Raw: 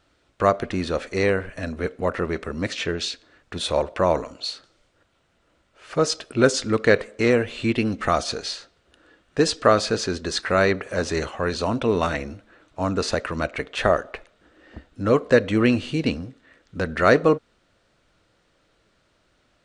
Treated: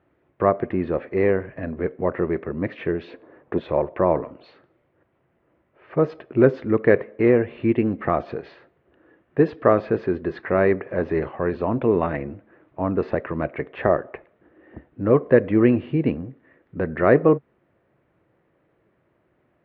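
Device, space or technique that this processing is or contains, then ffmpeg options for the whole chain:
bass cabinet: -filter_complex "[0:a]highpass=82,equalizer=f=140:t=q:w=4:g=6,equalizer=f=360:t=q:w=4:g=6,equalizer=f=1400:t=q:w=4:g=-8,lowpass=f=2000:w=0.5412,lowpass=f=2000:w=1.3066,asettb=1/sr,asplit=3[s0][s1][s2];[s0]atrim=end=3.084[s3];[s1]atrim=start=3.08:end=3.6,asetpts=PTS-STARTPTS,afade=t=in:d=0.004:c=qsin,afade=t=out:st=0.516:d=0.004:c=qsin,equalizer=f=250:t=o:w=1:g=5,equalizer=f=500:t=o:w=1:g=10,equalizer=f=1000:t=o:w=1:g=7[s4];[s2]atrim=start=3.596[s5];[s3][s4]acrossfade=d=0.004:c1=hsin:c2=qsin[s6];[s6][s5]acrossfade=d=0.004:c1=qsin:c2=hsin"

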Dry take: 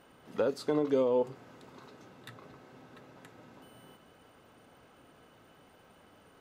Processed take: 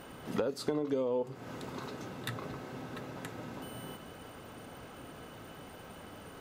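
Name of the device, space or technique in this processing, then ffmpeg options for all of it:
ASMR close-microphone chain: -af "lowshelf=f=210:g=4.5,acompressor=threshold=0.01:ratio=6,highshelf=f=7700:g=4.5,volume=2.99"

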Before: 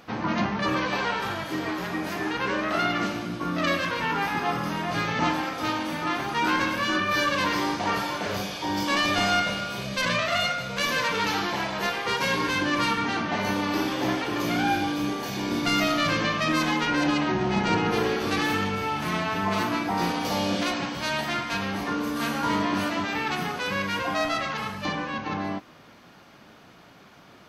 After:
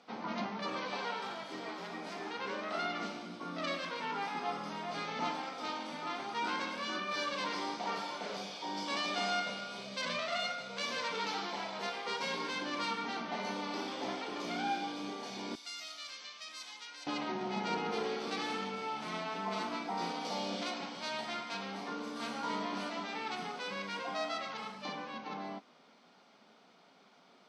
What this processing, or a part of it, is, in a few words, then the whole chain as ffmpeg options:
television speaker: -filter_complex "[0:a]highpass=f=220:w=0.5412,highpass=f=220:w=1.3066,equalizer=f=320:t=q:w=4:g=-10,equalizer=f=560:t=q:w=4:g=-3,equalizer=f=1100:t=q:w=4:g=-4,equalizer=f=1700:t=q:w=4:g=-9,equalizer=f=2700:t=q:w=4:g=-5,equalizer=f=6700:t=q:w=4:g=-6,lowpass=f=8000:w=0.5412,lowpass=f=8000:w=1.3066,asettb=1/sr,asplit=3[s0][s1][s2];[s0]atrim=end=15.554[s3];[s1]atrim=start=15.55:end=17.07,asetpts=PTS-STARTPTS,afade=t=in:d=0.004:c=qsin,afade=t=out:st=1.516:d=0.004:c=qsin,aderivative[s4];[s2]atrim=start=17.066[s5];[s3][s4]acrossfade=d=0.004:c1=hsin:c2=qsin[s6];[s6][s5]acrossfade=d=0.004:c1=qsin:c2=hsin,volume=0.422"

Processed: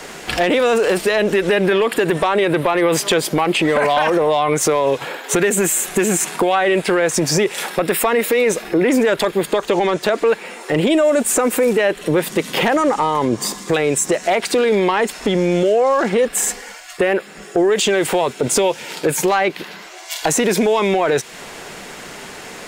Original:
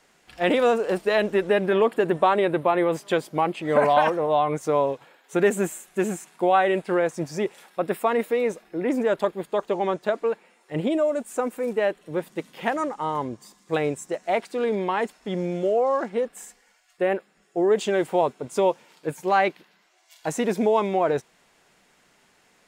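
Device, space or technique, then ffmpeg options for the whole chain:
mastering chain: -filter_complex "[0:a]asettb=1/sr,asplit=3[s0][s1][s2];[s0]atrim=end=18.354[s3];[s1]atrim=start=18.35:end=19.09,asetpts=PTS-STARTPTS,afade=t=in:d=0.004:c=qsin,afade=t=out:st=0.736:d=0.004:c=qsin,bandreject=f=1100:w=5.8[s4];[s2]atrim=start=19.086[s5];[s3][s4]acrossfade=d=0.004:c1=hsin:c2=qsin[s6];[s6][s5]acrossfade=d=0.004:c1=qsin:c2=hsin,equalizer=f=420:t=o:w=0.77:g=3.5,acrossover=split=110|1500[s7][s8][s9];[s7]acompressor=threshold=0.00112:ratio=4[s10];[s8]acompressor=threshold=0.0251:ratio=4[s11];[s9]acompressor=threshold=0.0178:ratio=4[s12];[s10][s11][s12]amix=inputs=3:normalize=0,acompressor=threshold=0.0158:ratio=2,asoftclip=type=tanh:threshold=0.0562,asoftclip=type=hard:threshold=0.0376,alimiter=level_in=50.1:limit=0.891:release=50:level=0:latency=1,volume=0.422"

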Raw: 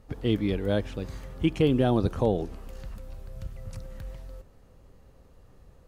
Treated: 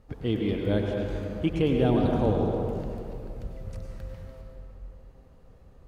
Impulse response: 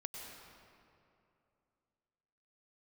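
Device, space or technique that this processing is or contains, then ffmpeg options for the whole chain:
swimming-pool hall: -filter_complex "[1:a]atrim=start_sample=2205[s0];[0:a][s0]afir=irnorm=-1:irlink=0,highshelf=f=4500:g=-5.5,volume=1.33"

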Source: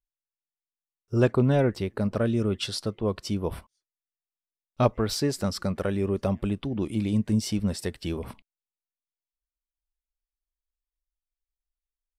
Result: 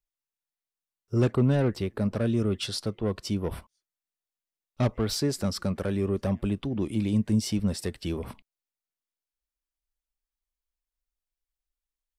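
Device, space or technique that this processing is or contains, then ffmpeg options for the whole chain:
one-band saturation: -filter_complex "[0:a]acrossover=split=350|4500[s0][s1][s2];[s1]asoftclip=type=tanh:threshold=0.0422[s3];[s0][s3][s2]amix=inputs=3:normalize=0"

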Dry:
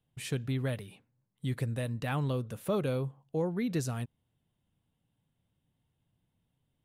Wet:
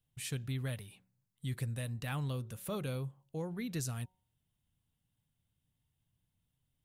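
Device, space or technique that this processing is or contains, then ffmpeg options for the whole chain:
smiley-face EQ: -af "lowshelf=f=110:g=4.5,equalizer=f=420:t=o:w=2.7:g=-6.5,highshelf=f=5500:g=7,bandreject=f=185.1:t=h:w=4,bandreject=f=370.2:t=h:w=4,bandreject=f=555.3:t=h:w=4,bandreject=f=740.4:t=h:w=4,bandreject=f=925.5:t=h:w=4,volume=0.668"

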